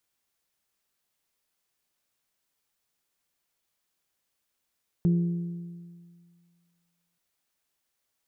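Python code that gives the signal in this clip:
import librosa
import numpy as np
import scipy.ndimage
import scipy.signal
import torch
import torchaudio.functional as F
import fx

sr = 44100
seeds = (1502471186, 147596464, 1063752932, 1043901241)

y = fx.strike_metal(sr, length_s=2.13, level_db=-18.0, body='bell', hz=172.0, decay_s=1.93, tilt_db=12.0, modes=5)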